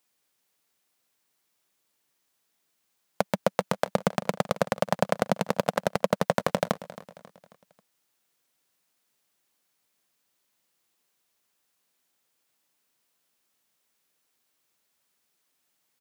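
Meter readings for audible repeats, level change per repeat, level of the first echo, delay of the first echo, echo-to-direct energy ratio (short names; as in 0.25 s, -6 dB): 3, -6.5 dB, -17.0 dB, 0.27 s, -16.0 dB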